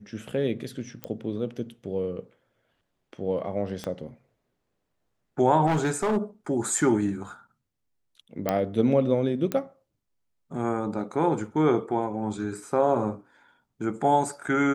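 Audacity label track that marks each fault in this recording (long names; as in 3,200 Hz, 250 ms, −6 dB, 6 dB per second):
1.040000	1.040000	click −16 dBFS
3.840000	3.840000	click −19 dBFS
5.660000	6.180000	clipping −20.5 dBFS
8.490000	8.490000	click −11 dBFS
9.520000	9.520000	click −14 dBFS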